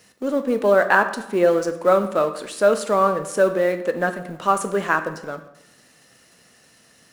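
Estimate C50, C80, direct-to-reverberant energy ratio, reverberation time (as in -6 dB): 11.0 dB, 13.5 dB, 8.5 dB, 0.90 s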